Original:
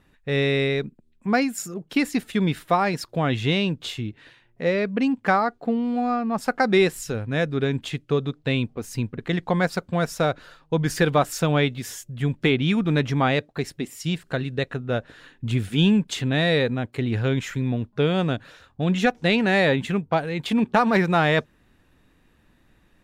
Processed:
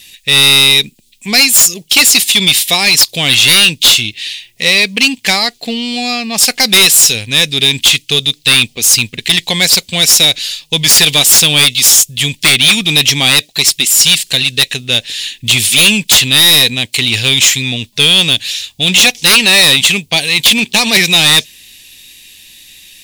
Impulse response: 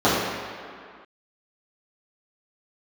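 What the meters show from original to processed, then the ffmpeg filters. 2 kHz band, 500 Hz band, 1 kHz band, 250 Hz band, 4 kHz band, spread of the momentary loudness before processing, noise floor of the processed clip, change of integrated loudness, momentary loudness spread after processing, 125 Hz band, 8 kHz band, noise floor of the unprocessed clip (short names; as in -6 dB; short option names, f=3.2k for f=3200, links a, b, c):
+15.5 dB, +1.0 dB, +3.0 dB, +2.0 dB, +26.0 dB, 10 LU, -49 dBFS, +16.0 dB, 9 LU, +3.0 dB, +30.5 dB, -61 dBFS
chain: -af "aexciter=amount=13.3:drive=10:freq=2.3k,acontrast=53,volume=-2dB"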